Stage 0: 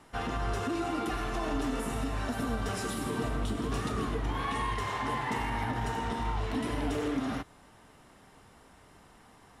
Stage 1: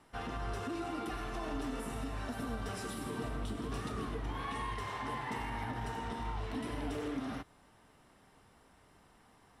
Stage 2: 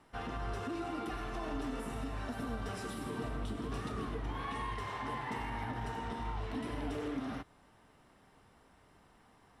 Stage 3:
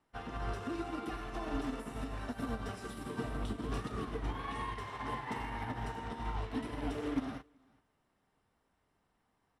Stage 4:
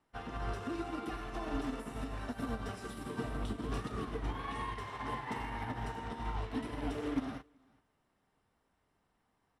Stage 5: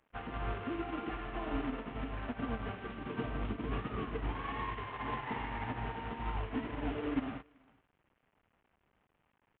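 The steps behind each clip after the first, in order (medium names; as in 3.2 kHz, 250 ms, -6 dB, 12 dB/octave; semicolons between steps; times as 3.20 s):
band-stop 6.8 kHz, Q 13; trim -6.5 dB
treble shelf 5.4 kHz -5 dB
delay 383 ms -15 dB; upward expansion 2.5:1, over -47 dBFS; trim +6 dB
no audible change
CVSD coder 16 kbps; trim +1 dB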